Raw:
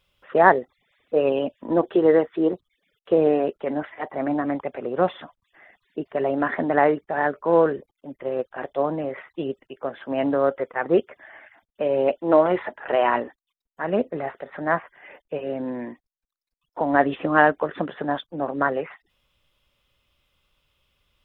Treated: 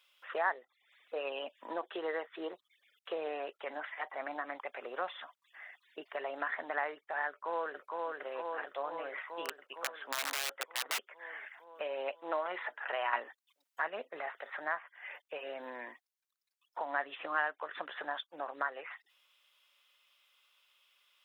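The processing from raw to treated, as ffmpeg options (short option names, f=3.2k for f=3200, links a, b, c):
-filter_complex "[0:a]asplit=2[a][b];[b]afade=t=in:st=7.28:d=0.01,afade=t=out:st=8.11:d=0.01,aecho=0:1:460|920|1380|1840|2300|2760|3220|3680|4140|4600|5060|5520:0.595662|0.416964|0.291874|0.204312|0.143018|0.100113|0.0700791|0.0490553|0.0343387|0.0240371|0.016826|0.0117782[c];[a][c]amix=inputs=2:normalize=0,asplit=3[d][e][f];[d]afade=t=out:st=9.45:d=0.02[g];[e]aeval=exprs='(mod(7.5*val(0)+1,2)-1)/7.5':c=same,afade=t=in:st=9.45:d=0.02,afade=t=out:st=10.97:d=0.02[h];[f]afade=t=in:st=10.97:d=0.02[i];[g][h][i]amix=inputs=3:normalize=0,asplit=3[j][k][l];[j]atrim=end=13.132[m];[k]atrim=start=13.128:end=13.882,asetpts=PTS-STARTPTS,volume=7.5dB[n];[l]atrim=start=13.878[o];[m][n]acrossfade=d=0.004:c1=hsin:c2=hsin[p];[p][o]acrossfade=d=0.004:c1=hsin:c2=hsin,highpass=1.1k,acompressor=threshold=-42dB:ratio=2,volume=2dB"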